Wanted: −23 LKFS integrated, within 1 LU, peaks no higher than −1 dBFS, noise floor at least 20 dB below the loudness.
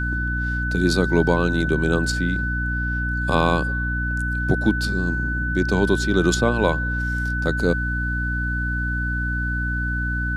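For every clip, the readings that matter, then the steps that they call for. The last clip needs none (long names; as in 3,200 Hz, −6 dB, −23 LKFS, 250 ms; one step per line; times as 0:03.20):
mains hum 60 Hz; hum harmonics up to 300 Hz; level of the hum −23 dBFS; interfering tone 1,500 Hz; level of the tone −25 dBFS; integrated loudness −22.0 LKFS; sample peak −3.0 dBFS; target loudness −23.0 LKFS
→ mains-hum notches 60/120/180/240/300 Hz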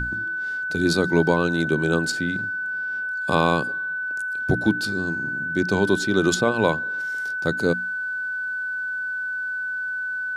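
mains hum none found; interfering tone 1,500 Hz; level of the tone −25 dBFS
→ notch filter 1,500 Hz, Q 30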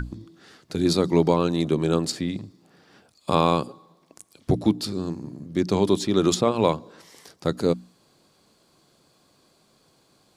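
interfering tone none found; integrated loudness −24.0 LKFS; sample peak −4.5 dBFS; target loudness −23.0 LKFS
→ level +1 dB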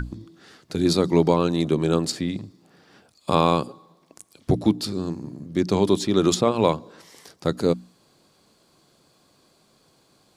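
integrated loudness −23.0 LKFS; sample peak −3.5 dBFS; background noise floor −62 dBFS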